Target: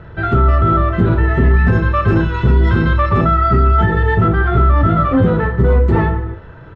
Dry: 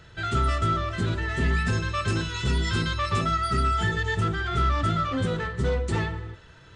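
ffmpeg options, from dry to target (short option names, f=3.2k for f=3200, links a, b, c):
-filter_complex "[0:a]lowpass=1.2k,asplit=2[a][b];[b]adelay=33,volume=-8dB[c];[a][c]amix=inputs=2:normalize=0,alimiter=level_in=18dB:limit=-1dB:release=50:level=0:latency=1,volume=-3dB"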